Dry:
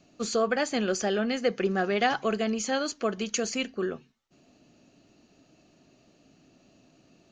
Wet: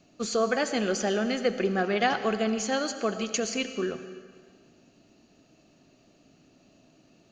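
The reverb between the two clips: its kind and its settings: digital reverb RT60 1.7 s, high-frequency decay 0.95×, pre-delay 45 ms, DRR 10 dB

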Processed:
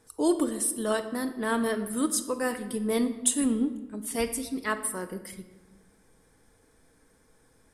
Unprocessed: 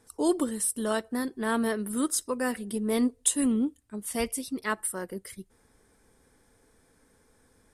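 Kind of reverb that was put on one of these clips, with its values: shoebox room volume 850 m³, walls mixed, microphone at 0.57 m

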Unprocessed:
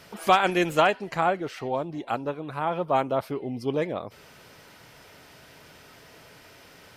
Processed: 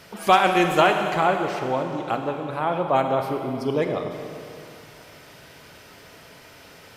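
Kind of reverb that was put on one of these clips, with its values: Schroeder reverb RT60 2.7 s, combs from 31 ms, DRR 4.5 dB; gain +2.5 dB

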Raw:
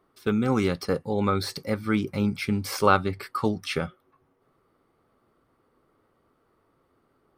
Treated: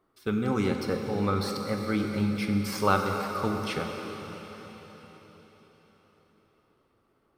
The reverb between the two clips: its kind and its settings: plate-style reverb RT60 4.6 s, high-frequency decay 1×, DRR 2.5 dB; gain -4.5 dB

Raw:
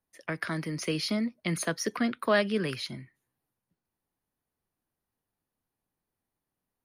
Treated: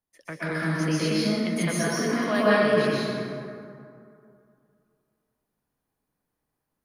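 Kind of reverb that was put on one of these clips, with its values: plate-style reverb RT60 2.5 s, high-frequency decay 0.45×, pre-delay 0.11 s, DRR -9 dB; gain -4 dB

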